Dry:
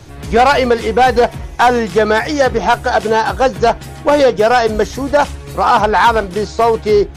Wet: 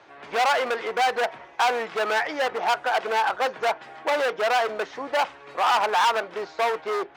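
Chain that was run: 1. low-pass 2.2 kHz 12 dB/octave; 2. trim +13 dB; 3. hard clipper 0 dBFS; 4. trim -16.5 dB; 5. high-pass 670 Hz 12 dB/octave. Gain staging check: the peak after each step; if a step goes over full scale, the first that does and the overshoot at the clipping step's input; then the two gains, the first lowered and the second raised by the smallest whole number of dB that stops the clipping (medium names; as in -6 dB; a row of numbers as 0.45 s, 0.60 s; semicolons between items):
-3.0 dBFS, +10.0 dBFS, 0.0 dBFS, -16.5 dBFS, -11.0 dBFS; step 2, 10.0 dB; step 2 +3 dB, step 4 -6.5 dB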